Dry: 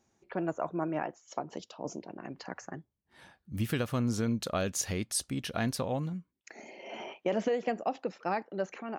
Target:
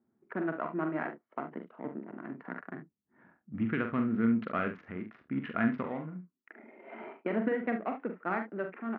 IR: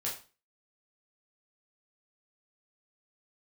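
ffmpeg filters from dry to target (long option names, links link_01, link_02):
-filter_complex "[0:a]asettb=1/sr,asplit=3[link_01][link_02][link_03];[link_01]atrim=end=4.754[link_04];[link_02]atrim=start=4.75:end=5.3,asetpts=PTS-STARTPTS,afade=type=in:duration=0.004:curve=qsin,afade=type=out:start_time=0.546:duration=0.004:curve=qsin,acompressor=threshold=-34dB:ratio=16[link_05];[link_03]atrim=start=5.296[link_06];[link_04][link_05]acrossfade=duration=0.004:curve1=hsin:curve2=qsin[link_07];[link_07][link_06]acrossfade=duration=0.004:curve1=qsin:curve2=hsin,asettb=1/sr,asplit=3[link_08][link_09][link_10];[link_08]atrim=end=5.864[link_11];[link_09]atrim=start=5.86:end=7.01,asetpts=PTS-STARTPTS,afade=type=in:duration=0.004:curve=qsin,afade=type=out:start_time=1.146:duration=0.004:curve=qsin,lowshelf=frequency=230:gain=-8.5[link_12];[link_10]atrim=start=7.006[link_13];[link_11][link_12]acrossfade=duration=0.004:curve1=hsin:curve2=qsin[link_14];[link_14][link_13]acrossfade=duration=0.004:curve1=qsin:curve2=hsin,adynamicsmooth=sensitivity=8:basefreq=750,highpass=180,equalizer=frequency=230:width_type=q:width=4:gain=6,equalizer=frequency=540:width_type=q:width=4:gain=-7,equalizer=frequency=800:width_type=q:width=4:gain=-6,equalizer=frequency=1400:width_type=q:width=4:gain=6,equalizer=frequency=2000:width_type=q:width=4:gain=5,lowpass=frequency=2300:width=0.5412,lowpass=frequency=2300:width=1.3066,aecho=1:1:44|72:0.473|0.237"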